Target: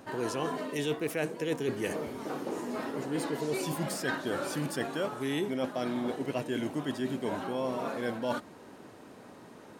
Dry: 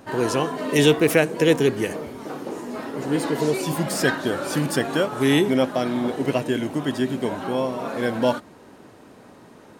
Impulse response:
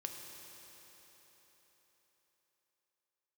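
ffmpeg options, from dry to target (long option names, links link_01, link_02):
-af "lowshelf=frequency=64:gain=-8.5,areverse,acompressor=threshold=-26dB:ratio=6,areverse,volume=-3dB"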